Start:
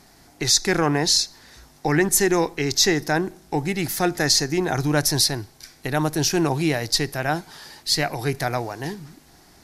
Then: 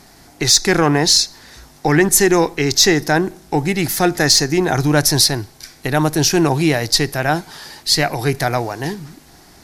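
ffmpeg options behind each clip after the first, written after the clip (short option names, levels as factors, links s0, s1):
-af "asoftclip=type=tanh:threshold=0.501,volume=2.11"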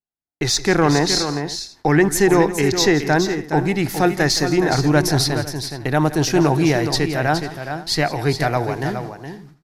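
-af "agate=range=0.00224:threshold=0.02:ratio=16:detection=peak,highshelf=f=3900:g=-10.5,aecho=1:1:169|418|501:0.158|0.376|0.1,volume=0.891"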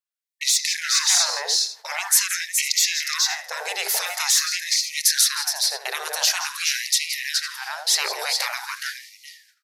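-filter_complex "[0:a]afftfilt=real='re*lt(hypot(re,im),0.2)':imag='im*lt(hypot(re,im),0.2)':win_size=1024:overlap=0.75,acrossover=split=550|3500[s0][s1][s2];[s2]dynaudnorm=f=160:g=5:m=2.37[s3];[s0][s1][s3]amix=inputs=3:normalize=0,afftfilt=real='re*gte(b*sr/1024,370*pow(1900/370,0.5+0.5*sin(2*PI*0.46*pts/sr)))':imag='im*gte(b*sr/1024,370*pow(1900/370,0.5+0.5*sin(2*PI*0.46*pts/sr)))':win_size=1024:overlap=0.75,volume=1.26"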